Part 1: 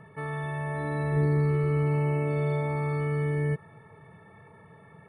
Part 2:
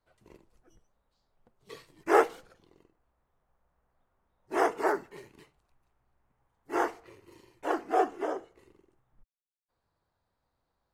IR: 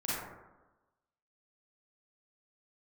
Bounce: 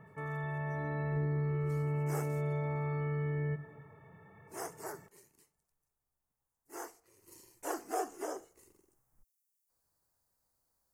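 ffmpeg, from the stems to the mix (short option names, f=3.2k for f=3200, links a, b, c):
-filter_complex "[0:a]lowpass=2.9k,volume=-6.5dB,asplit=3[a][b][c];[b]volume=-17dB[d];[c]volume=-22.5dB[e];[1:a]aexciter=amount=9.4:drive=4.2:freq=5.2k,volume=-6.5dB,afade=t=in:st=7.12:d=0.2:silence=0.298538[f];[2:a]atrim=start_sample=2205[g];[d][g]afir=irnorm=-1:irlink=0[h];[e]aecho=0:1:282|564|846|1128|1410:1|0.38|0.144|0.0549|0.0209[i];[a][f][h][i]amix=inputs=4:normalize=0,acompressor=threshold=-33dB:ratio=2"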